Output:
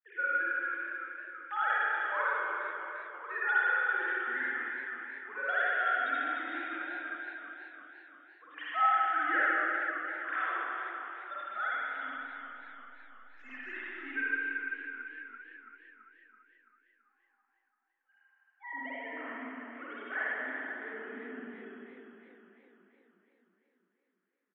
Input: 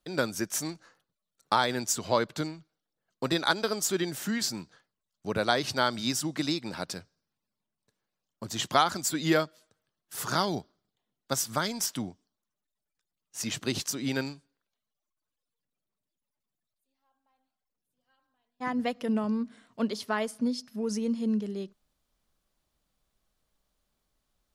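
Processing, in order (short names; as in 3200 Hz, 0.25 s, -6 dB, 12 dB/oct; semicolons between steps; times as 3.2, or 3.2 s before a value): sine-wave speech; in parallel at -7.5 dB: soft clip -25.5 dBFS, distortion -9 dB; on the sum: band-pass 1700 Hz, Q 5.6; 12–13.77 backlash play -59 dBFS; air absorption 90 m; feedback echo 0.51 s, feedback 59%, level -23.5 dB; reverb RT60 3.0 s, pre-delay 46 ms, DRR -9 dB; warbling echo 0.335 s, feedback 58%, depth 84 cents, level -12 dB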